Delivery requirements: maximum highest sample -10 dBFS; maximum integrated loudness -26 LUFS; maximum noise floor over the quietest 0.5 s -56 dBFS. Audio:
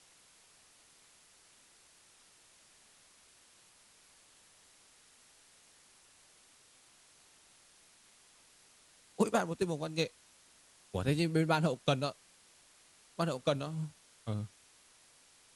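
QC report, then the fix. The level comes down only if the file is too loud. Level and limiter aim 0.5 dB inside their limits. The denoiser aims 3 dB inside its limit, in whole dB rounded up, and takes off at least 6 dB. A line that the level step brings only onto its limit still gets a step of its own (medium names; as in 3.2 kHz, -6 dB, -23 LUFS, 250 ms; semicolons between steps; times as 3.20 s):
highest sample -14.0 dBFS: pass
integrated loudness -34.5 LUFS: pass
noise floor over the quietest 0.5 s -63 dBFS: pass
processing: none needed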